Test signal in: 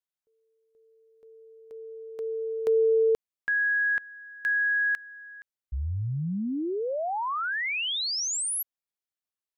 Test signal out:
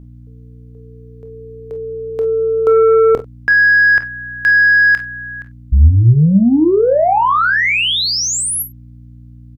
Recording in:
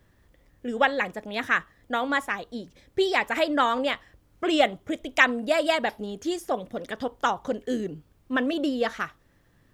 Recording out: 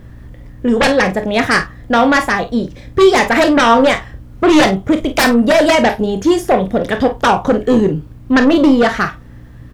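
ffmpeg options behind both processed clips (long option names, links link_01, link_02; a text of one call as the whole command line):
ffmpeg -i in.wav -filter_complex "[0:a]lowshelf=frequency=150:gain=7,aeval=exprs='0.668*sin(PI/2*6.31*val(0)/0.668)':channel_layout=same,aeval=exprs='val(0)+0.0224*(sin(2*PI*60*n/s)+sin(2*PI*2*60*n/s)/2+sin(2*PI*3*60*n/s)/3+sin(2*PI*4*60*n/s)/4+sin(2*PI*5*60*n/s)/5)':channel_layout=same,highshelf=frequency=3000:gain=-7,asplit=2[link_01][link_02];[link_02]adelay=42,volume=-13dB[link_03];[link_01][link_03]amix=inputs=2:normalize=0,asplit=2[link_04][link_05];[link_05]aecho=0:1:26|52:0.282|0.2[link_06];[link_04][link_06]amix=inputs=2:normalize=0,volume=-2.5dB" out.wav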